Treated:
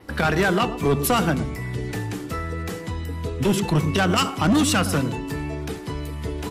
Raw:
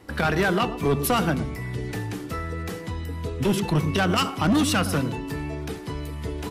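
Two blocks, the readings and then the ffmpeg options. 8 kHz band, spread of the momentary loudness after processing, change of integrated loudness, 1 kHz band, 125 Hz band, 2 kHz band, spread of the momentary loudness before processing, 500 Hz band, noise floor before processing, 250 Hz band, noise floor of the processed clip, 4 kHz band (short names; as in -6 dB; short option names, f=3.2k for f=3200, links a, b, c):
+4.0 dB, 11 LU, +2.0 dB, +2.0 dB, +2.0 dB, +2.0 dB, 11 LU, +2.0 dB, -36 dBFS, +2.0 dB, -34 dBFS, +2.0 dB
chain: -af "adynamicequalizer=threshold=0.00251:dfrequency=7400:dqfactor=3.5:tfrequency=7400:tqfactor=3.5:attack=5:release=100:ratio=0.375:range=2.5:mode=boostabove:tftype=bell,volume=2dB"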